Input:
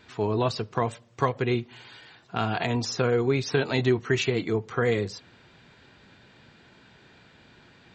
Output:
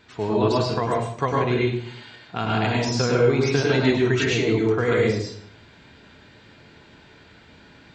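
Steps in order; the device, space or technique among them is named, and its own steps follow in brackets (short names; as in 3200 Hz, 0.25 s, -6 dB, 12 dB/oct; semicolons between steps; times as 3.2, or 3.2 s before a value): bathroom (reverb RT60 0.60 s, pre-delay 96 ms, DRR -3.5 dB)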